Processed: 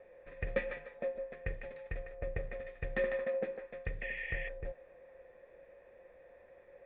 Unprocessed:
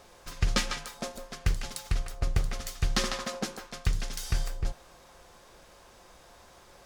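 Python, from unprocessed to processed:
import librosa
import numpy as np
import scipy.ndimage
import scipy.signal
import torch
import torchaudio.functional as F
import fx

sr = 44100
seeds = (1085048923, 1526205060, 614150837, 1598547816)

y = fx.spec_paint(x, sr, seeds[0], shape='noise', start_s=4.01, length_s=0.48, low_hz=1700.0, high_hz=3400.0, level_db=-35.0)
y = fx.formant_cascade(y, sr, vowel='e')
y = y * librosa.db_to_amplitude(7.0)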